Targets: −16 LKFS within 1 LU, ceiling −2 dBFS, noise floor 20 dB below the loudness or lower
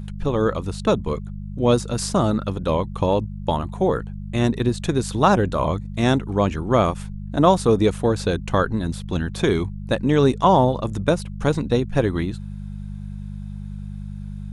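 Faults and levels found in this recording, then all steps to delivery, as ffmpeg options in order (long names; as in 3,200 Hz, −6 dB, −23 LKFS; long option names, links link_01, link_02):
mains hum 50 Hz; hum harmonics up to 200 Hz; level of the hum −29 dBFS; integrated loudness −21.5 LKFS; sample peak −2.5 dBFS; target loudness −16.0 LKFS
→ -af "bandreject=frequency=50:width_type=h:width=4,bandreject=frequency=100:width_type=h:width=4,bandreject=frequency=150:width_type=h:width=4,bandreject=frequency=200:width_type=h:width=4"
-af "volume=5.5dB,alimiter=limit=-2dB:level=0:latency=1"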